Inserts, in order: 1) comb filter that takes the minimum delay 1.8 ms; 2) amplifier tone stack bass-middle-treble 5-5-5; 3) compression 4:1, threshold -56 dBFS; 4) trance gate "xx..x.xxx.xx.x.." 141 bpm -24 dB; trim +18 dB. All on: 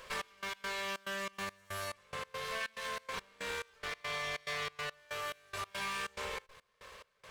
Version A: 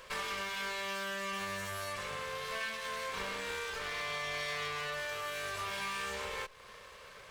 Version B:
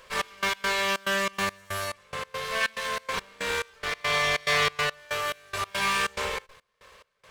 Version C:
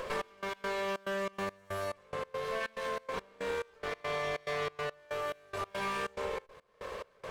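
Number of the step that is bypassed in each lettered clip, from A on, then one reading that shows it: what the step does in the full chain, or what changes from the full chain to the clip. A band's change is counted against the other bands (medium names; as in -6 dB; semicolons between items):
4, crest factor change -1.5 dB; 3, mean gain reduction 9.5 dB; 2, 8 kHz band -8.5 dB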